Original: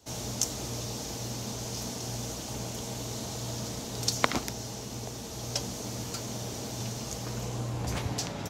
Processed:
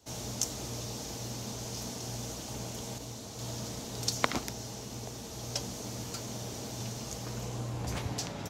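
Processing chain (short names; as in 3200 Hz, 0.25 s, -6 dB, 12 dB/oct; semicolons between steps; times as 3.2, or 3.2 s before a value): 2.98–3.39 detuned doubles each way 60 cents; gain -3 dB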